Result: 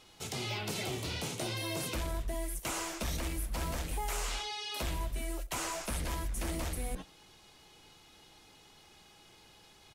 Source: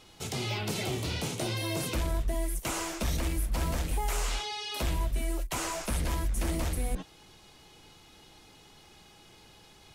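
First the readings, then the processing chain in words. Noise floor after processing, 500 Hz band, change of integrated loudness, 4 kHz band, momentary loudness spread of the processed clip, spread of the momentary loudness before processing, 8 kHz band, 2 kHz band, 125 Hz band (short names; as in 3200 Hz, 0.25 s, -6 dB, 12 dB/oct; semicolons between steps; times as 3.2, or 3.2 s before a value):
-59 dBFS, -4.0 dB, -4.0 dB, -2.5 dB, 3 LU, 3 LU, -2.5 dB, -2.5 dB, -6.5 dB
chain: low shelf 390 Hz -4 dB; echo 89 ms -21.5 dB; gain -2.5 dB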